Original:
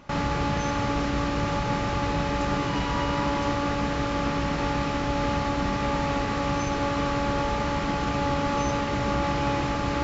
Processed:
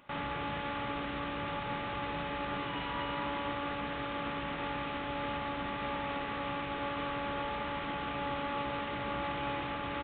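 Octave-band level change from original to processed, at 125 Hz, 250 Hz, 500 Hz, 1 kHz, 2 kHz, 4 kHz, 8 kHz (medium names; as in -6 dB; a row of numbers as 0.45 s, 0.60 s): -15.5 dB, -12.5 dB, -10.5 dB, -8.5 dB, -6.5 dB, -7.5 dB, no reading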